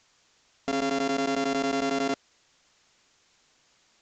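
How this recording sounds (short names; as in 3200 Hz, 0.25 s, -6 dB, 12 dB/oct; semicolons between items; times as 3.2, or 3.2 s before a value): a buzz of ramps at a fixed pitch in blocks of 64 samples; chopped level 11 Hz, duty 85%; a quantiser's noise floor 10-bit, dither triangular; Vorbis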